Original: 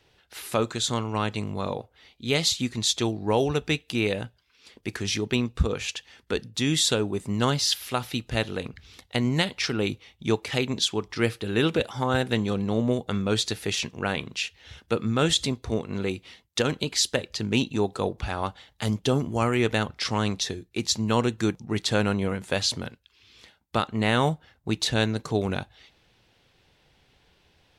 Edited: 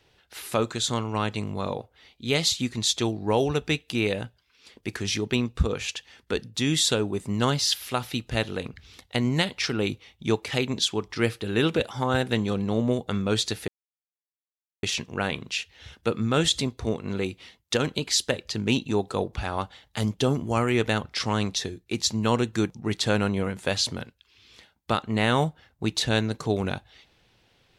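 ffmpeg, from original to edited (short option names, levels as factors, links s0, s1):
-filter_complex "[0:a]asplit=2[s0][s1];[s0]atrim=end=13.68,asetpts=PTS-STARTPTS,afade=t=out:st=13.676:d=0.004:c=hsin,apad=pad_dur=1.15[s2];[s1]atrim=start=13.68,asetpts=PTS-STARTPTS,afade=t=in:d=0.004:c=hsin[s3];[s2][s3]concat=n=2:v=0:a=1"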